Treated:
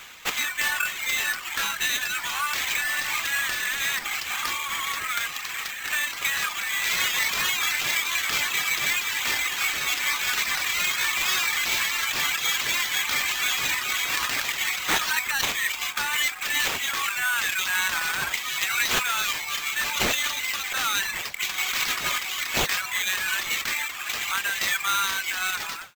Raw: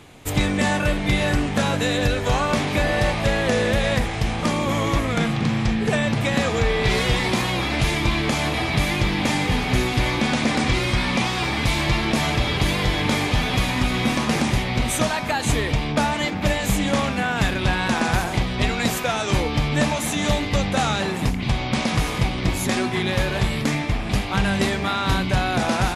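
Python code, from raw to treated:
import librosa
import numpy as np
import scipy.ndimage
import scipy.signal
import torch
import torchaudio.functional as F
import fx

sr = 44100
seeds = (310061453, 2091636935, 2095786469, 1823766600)

p1 = fx.fade_out_tail(x, sr, length_s=0.63)
p2 = fx.dereverb_blind(p1, sr, rt60_s=0.95)
p3 = fx.over_compress(p2, sr, threshold_db=-30.0, ratio=-1.0)
p4 = p2 + (p3 * 10.0 ** (0.0 / 20.0))
p5 = fx.quant_float(p4, sr, bits=4)
p6 = scipy.signal.sosfilt(scipy.signal.cheby2(4, 50, 470.0, 'highpass', fs=sr, output='sos'), p5)
y = fx.sample_hold(p6, sr, seeds[0], rate_hz=10000.0, jitter_pct=0)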